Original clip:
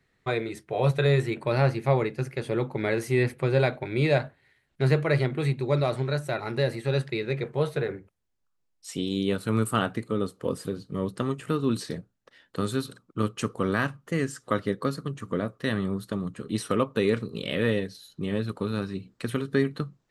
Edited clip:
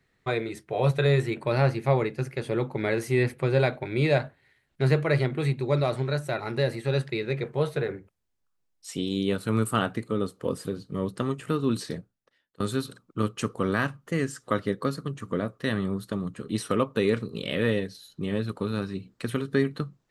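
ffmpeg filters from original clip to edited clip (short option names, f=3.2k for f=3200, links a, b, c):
-filter_complex "[0:a]asplit=2[a][b];[a]atrim=end=12.6,asetpts=PTS-STARTPTS,afade=t=out:st=11.96:d=0.64:c=qua:silence=0.0707946[c];[b]atrim=start=12.6,asetpts=PTS-STARTPTS,afade=t=in:d=0.004:c=hsin:silence=0.0707946[d];[c][d]concat=n=2:v=0:a=1"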